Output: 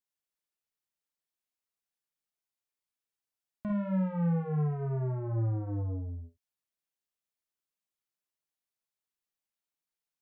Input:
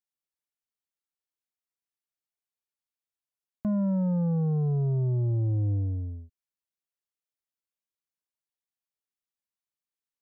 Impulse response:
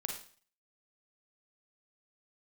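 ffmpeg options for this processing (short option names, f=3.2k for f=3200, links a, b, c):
-filter_complex "[0:a]asoftclip=type=tanh:threshold=-29.5dB[a];[1:a]atrim=start_sample=2205,atrim=end_sample=3528[b];[a][b]afir=irnorm=-1:irlink=0"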